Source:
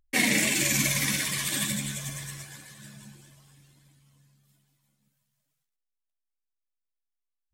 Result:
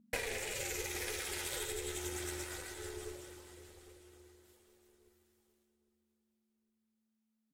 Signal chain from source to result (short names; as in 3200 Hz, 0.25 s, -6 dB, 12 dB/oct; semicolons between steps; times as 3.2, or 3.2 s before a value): ring modulator 220 Hz; compressor 12:1, threshold -40 dBFS, peak gain reduction 18 dB; on a send: feedback echo 0.808 s, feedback 32%, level -16.5 dB; on the sum: added harmonics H 2 -19 dB, 4 -33 dB, 6 -30 dB, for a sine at -27 dBFS; bell 590 Hz +5.5 dB 1.9 oct; gain +3 dB